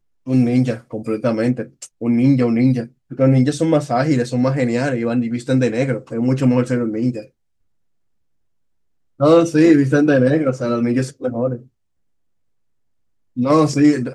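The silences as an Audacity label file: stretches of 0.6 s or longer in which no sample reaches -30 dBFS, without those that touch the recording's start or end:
7.210000	9.200000	silence
11.570000	13.370000	silence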